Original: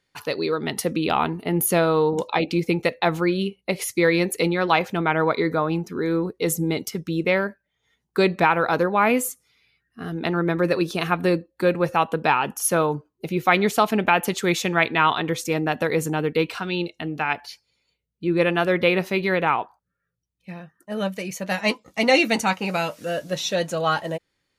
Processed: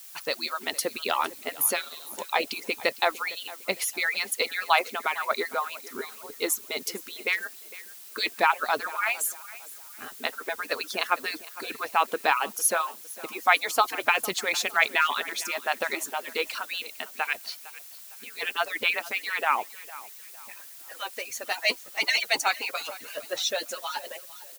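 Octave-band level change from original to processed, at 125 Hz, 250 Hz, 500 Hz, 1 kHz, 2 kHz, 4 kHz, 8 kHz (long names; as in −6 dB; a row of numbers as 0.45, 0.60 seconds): below −30 dB, −20.5 dB, −11.0 dB, −4.5 dB, −2.0 dB, 0.0 dB, 0.0 dB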